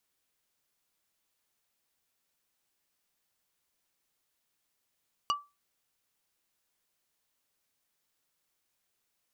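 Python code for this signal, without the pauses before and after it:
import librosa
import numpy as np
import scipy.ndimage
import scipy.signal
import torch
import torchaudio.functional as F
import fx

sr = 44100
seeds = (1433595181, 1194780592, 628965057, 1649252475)

y = fx.strike_wood(sr, length_s=0.45, level_db=-22.5, body='plate', hz=1160.0, decay_s=0.25, tilt_db=4, modes=5)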